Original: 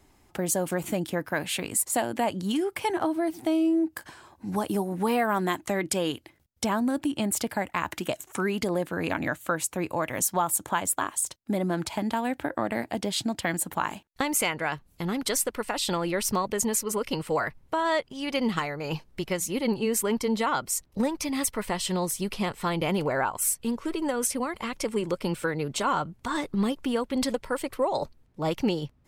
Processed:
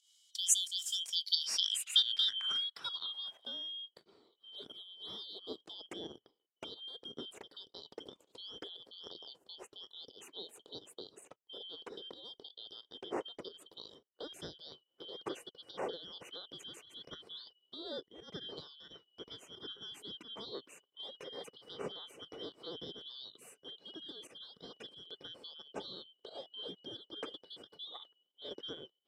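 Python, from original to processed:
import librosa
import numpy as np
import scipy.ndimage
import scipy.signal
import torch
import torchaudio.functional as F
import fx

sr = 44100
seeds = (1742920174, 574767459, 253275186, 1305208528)

y = fx.band_shuffle(x, sr, order='3412')
y = fx.filter_sweep_bandpass(y, sr, from_hz=6900.0, to_hz=430.0, start_s=1.04, end_s=3.86, q=2.5)
y = fx.volume_shaper(y, sr, bpm=89, per_beat=1, depth_db=-12, release_ms=148.0, shape='fast start')
y = F.gain(torch.from_numpy(y), 3.5).numpy()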